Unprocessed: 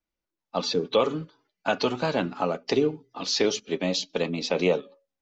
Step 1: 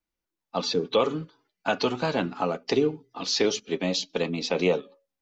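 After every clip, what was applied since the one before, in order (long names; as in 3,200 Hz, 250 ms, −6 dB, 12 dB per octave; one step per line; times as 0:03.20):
notch filter 590 Hz, Q 12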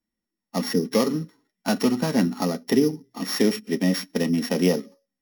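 samples sorted by size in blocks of 8 samples
hollow resonant body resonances 220/1,900 Hz, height 16 dB, ringing for 45 ms
level −2 dB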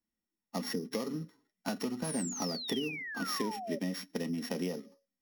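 downward compressor, threshold −26 dBFS, peak gain reduction 12 dB
sound drawn into the spectrogram fall, 0:02.04–0:03.79, 550–11,000 Hz −35 dBFS
level −6 dB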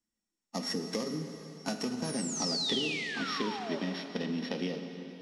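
low-pass filter sweep 7,800 Hz → 3,700 Hz, 0:01.96–0:02.75
dense smooth reverb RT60 3.5 s, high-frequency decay 0.95×, DRR 5.5 dB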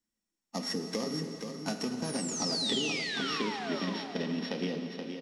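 single-tap delay 476 ms −7 dB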